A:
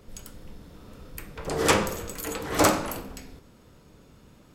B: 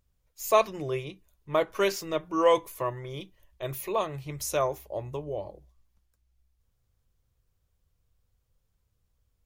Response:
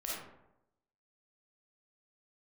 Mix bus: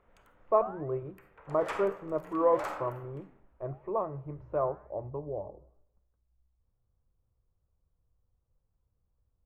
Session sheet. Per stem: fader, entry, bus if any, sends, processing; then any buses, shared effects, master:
−6.0 dB, 0.00 s, send −12 dB, adaptive Wiener filter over 9 samples; three-way crossover with the lows and the highs turned down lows −17 dB, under 590 Hz, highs −16 dB, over 2,400 Hz; automatic ducking −10 dB, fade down 1.90 s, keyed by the second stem
+1.5 dB, 0.00 s, send −23 dB, low-pass filter 1,200 Hz 24 dB per octave; flanger 1 Hz, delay 3.9 ms, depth 9.2 ms, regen −88%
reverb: on, RT60 0.85 s, pre-delay 10 ms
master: no processing

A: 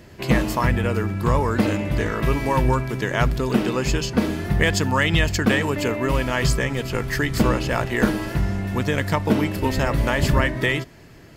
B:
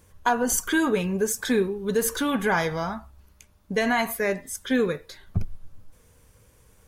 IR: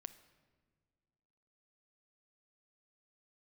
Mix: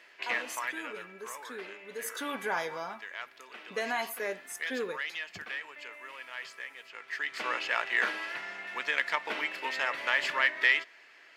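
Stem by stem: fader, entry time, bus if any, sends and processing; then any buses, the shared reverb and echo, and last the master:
0.0 dB, 0.00 s, send −14.5 dB, phase distortion by the signal itself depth 0.063 ms; resonant band-pass 2,200 Hz, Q 1.4; automatic ducking −17 dB, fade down 1.50 s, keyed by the second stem
0:01.89 −17.5 dB → 0:02.20 −8 dB, 0.00 s, no send, no processing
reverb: on, pre-delay 7 ms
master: high-pass filter 400 Hz 12 dB per octave

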